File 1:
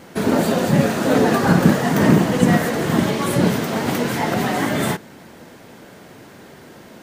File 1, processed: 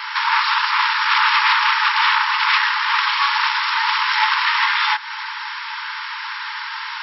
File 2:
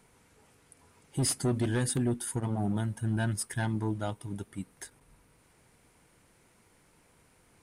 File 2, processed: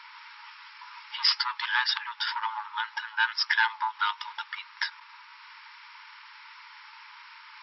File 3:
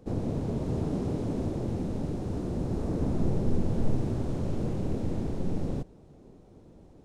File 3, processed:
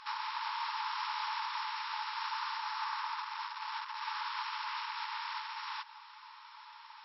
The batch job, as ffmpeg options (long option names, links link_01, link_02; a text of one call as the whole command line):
ffmpeg -i in.wav -af "aeval=exprs='0.891*sin(PI/2*7.08*val(0)/0.891)':channel_layout=same,acompressor=threshold=-12dB:ratio=5,afftfilt=real='re*between(b*sr/4096,840,5600)':imag='im*between(b*sr/4096,840,5600)':win_size=4096:overlap=0.75" out.wav